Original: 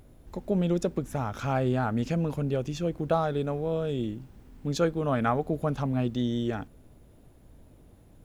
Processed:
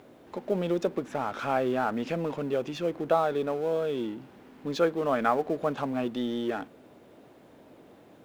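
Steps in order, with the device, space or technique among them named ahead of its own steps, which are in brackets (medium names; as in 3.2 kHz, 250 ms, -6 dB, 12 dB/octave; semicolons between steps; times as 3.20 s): phone line with mismatched companding (band-pass 310–3500 Hz; companding laws mixed up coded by mu); trim +1.5 dB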